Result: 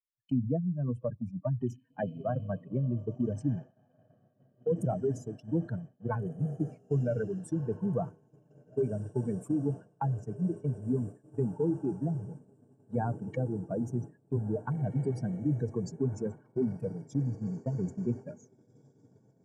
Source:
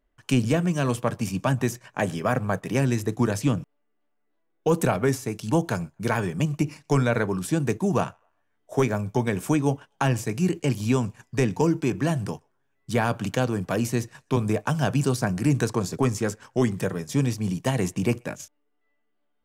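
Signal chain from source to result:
expanding power law on the bin magnitudes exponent 3
feedback delay with all-pass diffusion 1,794 ms, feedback 66%, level −14 dB
downward expander −25 dBFS
level −7 dB

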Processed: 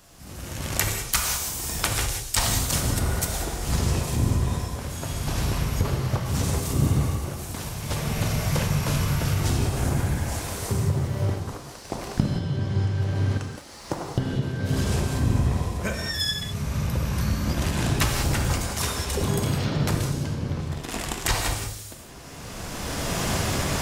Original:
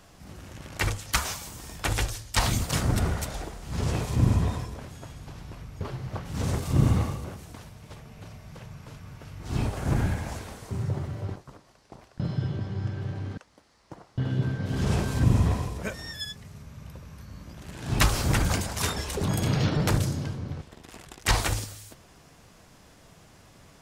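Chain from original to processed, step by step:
camcorder AGC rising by 18 dB per second
high-shelf EQ 5,700 Hz +10.5 dB, from 0:15.00 +2.5 dB
reverb whose tail is shaped and stops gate 220 ms flat, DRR 3 dB
level −2.5 dB

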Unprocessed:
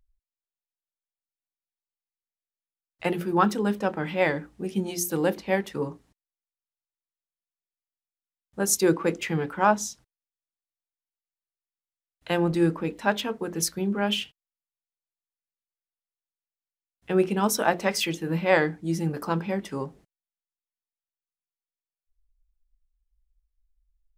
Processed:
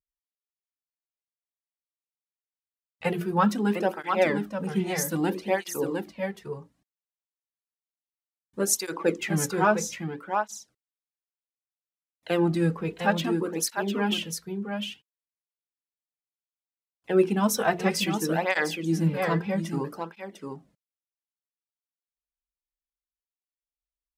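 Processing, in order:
noise gate with hold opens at −56 dBFS
on a send: single-tap delay 703 ms −6.5 dB
on the sum: through-zero flanger with one copy inverted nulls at 0.62 Hz, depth 3.8 ms
level +2 dB

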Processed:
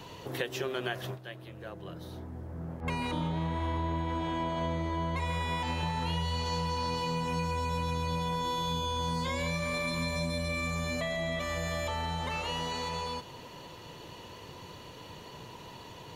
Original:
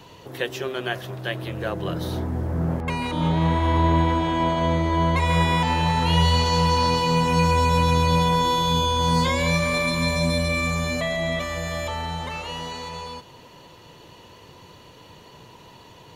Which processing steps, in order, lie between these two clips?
0:01.06–0:02.93: duck −15.5 dB, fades 0.13 s
0:05.31–0:05.83: hum removal 55.06 Hz, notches 37
downward compressor 6 to 1, threshold −30 dBFS, peak gain reduction 14.5 dB

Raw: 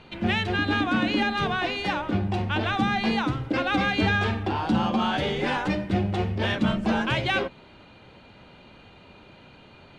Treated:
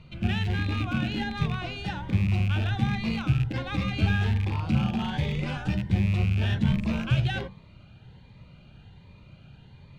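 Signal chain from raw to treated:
loose part that buzzes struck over −29 dBFS, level −19 dBFS
low shelf with overshoot 200 Hz +11 dB, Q 1.5
hum removal 96.97 Hz, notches 15
phaser whose notches keep moving one way rising 1.3 Hz
level −6 dB

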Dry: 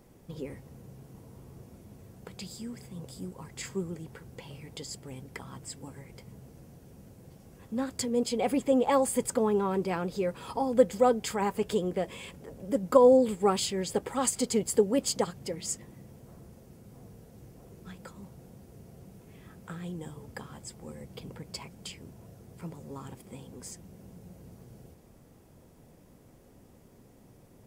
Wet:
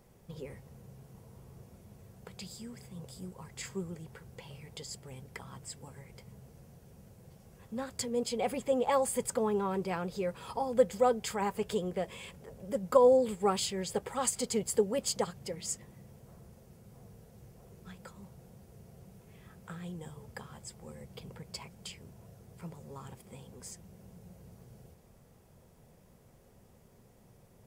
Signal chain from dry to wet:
parametric band 290 Hz −11.5 dB 0.4 octaves
level −2.5 dB

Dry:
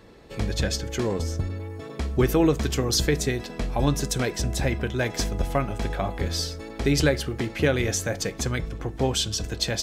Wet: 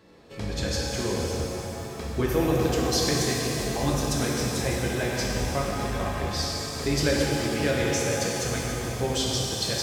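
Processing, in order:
high-pass filter 72 Hz
parametric band 5,000 Hz +2 dB
reverb with rising layers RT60 3.3 s, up +7 semitones, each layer −8 dB, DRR −3.5 dB
level −6 dB

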